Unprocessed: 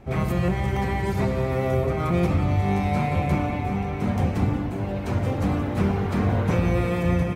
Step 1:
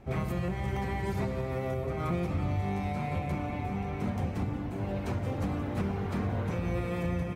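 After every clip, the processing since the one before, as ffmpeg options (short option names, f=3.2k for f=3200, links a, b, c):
-af "alimiter=limit=-17dB:level=0:latency=1:release=490,volume=-5dB"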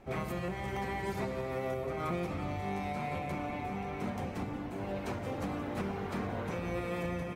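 -af "equalizer=f=84:t=o:w=2.3:g=-10.5"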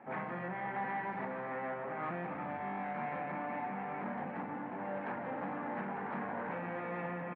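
-filter_complex "[0:a]asoftclip=type=tanh:threshold=-35.5dB,highpass=f=170:w=0.5412,highpass=f=170:w=1.3066,equalizer=f=390:t=q:w=4:g=-7,equalizer=f=870:t=q:w=4:g=8,equalizer=f=1.7k:t=q:w=4:g=7,lowpass=f=2.2k:w=0.5412,lowpass=f=2.2k:w=1.3066,asplit=2[a][b];[b]adelay=39,volume=-13dB[c];[a][c]amix=inputs=2:normalize=0,volume=1dB"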